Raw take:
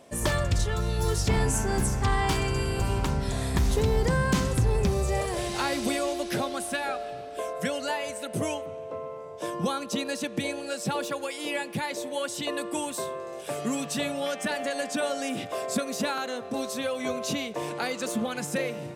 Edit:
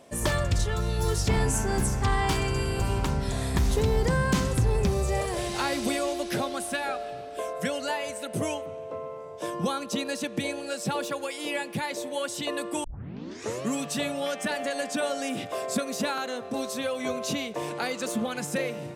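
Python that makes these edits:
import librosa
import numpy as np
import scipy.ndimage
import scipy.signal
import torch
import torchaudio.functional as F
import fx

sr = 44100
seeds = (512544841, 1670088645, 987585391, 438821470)

y = fx.edit(x, sr, fx.tape_start(start_s=12.84, length_s=0.85), tone=tone)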